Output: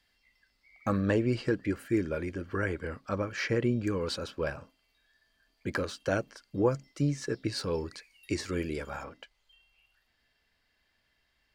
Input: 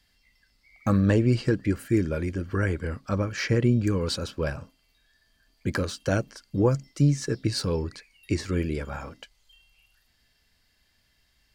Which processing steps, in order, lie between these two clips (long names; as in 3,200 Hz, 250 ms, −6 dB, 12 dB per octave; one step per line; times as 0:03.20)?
bass and treble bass −8 dB, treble −6 dB, from 0:07.73 treble +1 dB, from 0:09.03 treble −11 dB
level −2 dB